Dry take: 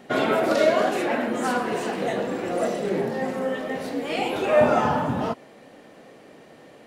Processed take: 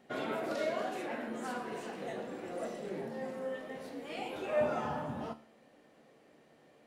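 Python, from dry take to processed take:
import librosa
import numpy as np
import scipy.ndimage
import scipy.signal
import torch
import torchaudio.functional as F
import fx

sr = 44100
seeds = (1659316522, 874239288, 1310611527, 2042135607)

y = fx.comb_fb(x, sr, f0_hz=75.0, decay_s=0.46, harmonics='all', damping=0.0, mix_pct=60)
y = y * librosa.db_to_amplitude(-9.0)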